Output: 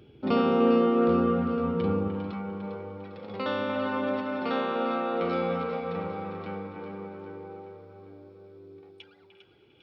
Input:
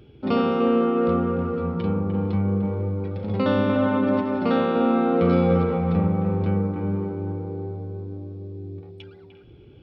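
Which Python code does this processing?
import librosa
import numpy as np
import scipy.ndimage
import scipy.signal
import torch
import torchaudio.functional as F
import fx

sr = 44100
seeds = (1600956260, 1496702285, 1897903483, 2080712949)

y = fx.highpass(x, sr, hz=fx.steps((0.0, 130.0), (2.08, 890.0)), slope=6)
y = fx.echo_split(y, sr, split_hz=1100.0, low_ms=222, high_ms=401, feedback_pct=52, wet_db=-9.0)
y = y * librosa.db_to_amplitude(-2.0)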